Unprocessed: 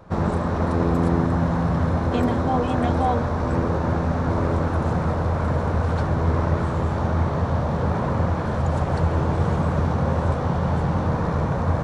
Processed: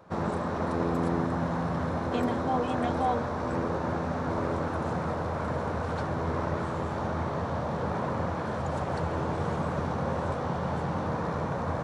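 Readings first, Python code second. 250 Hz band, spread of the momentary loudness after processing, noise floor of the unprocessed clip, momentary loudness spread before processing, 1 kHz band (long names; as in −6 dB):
−7.5 dB, 3 LU, −25 dBFS, 2 LU, −5.0 dB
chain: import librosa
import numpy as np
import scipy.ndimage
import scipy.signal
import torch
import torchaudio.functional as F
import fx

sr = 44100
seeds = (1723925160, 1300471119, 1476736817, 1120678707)

y = fx.highpass(x, sr, hz=220.0, slope=6)
y = y * 10.0 ** (-4.5 / 20.0)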